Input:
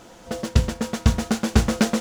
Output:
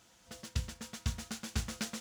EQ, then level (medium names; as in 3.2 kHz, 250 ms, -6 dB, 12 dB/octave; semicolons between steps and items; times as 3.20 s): high-pass 61 Hz; amplifier tone stack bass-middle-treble 5-5-5; bass shelf 100 Hz +6 dB; -4.5 dB